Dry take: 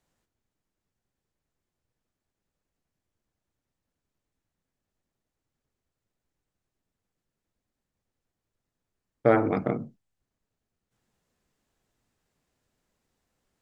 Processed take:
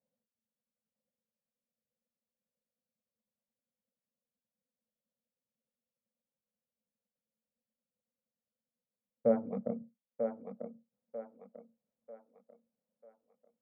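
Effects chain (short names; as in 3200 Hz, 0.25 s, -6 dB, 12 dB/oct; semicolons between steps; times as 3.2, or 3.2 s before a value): reverb removal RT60 0.76 s; double band-pass 340 Hz, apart 1.2 oct; thinning echo 0.943 s, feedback 43%, high-pass 310 Hz, level -5 dB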